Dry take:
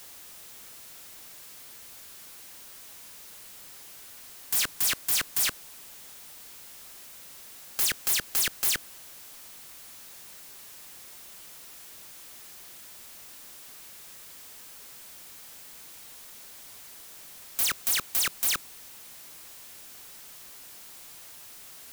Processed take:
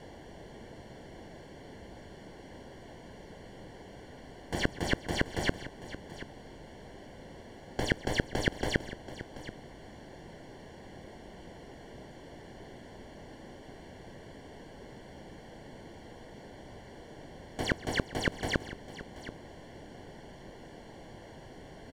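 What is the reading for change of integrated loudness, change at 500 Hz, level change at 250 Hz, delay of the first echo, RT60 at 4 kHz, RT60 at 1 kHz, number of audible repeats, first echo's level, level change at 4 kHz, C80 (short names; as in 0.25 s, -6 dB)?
-14.0 dB, +13.5 dB, +15.5 dB, 0.132 s, none, none, 2, -19.5 dB, -7.0 dB, none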